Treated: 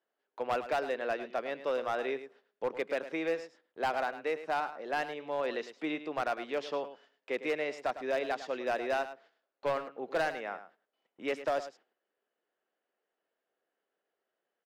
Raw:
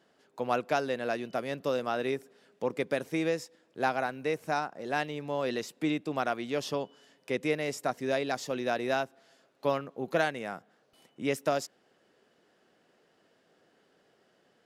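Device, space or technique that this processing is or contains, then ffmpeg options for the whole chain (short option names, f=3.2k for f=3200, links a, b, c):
walkie-talkie: -af "highpass=f=77:w=0.5412,highpass=f=77:w=1.3066,highpass=410,lowpass=3k,asoftclip=type=hard:threshold=-25dB,agate=range=-17dB:threshold=-60dB:ratio=16:detection=peak,aecho=1:1:105:0.237"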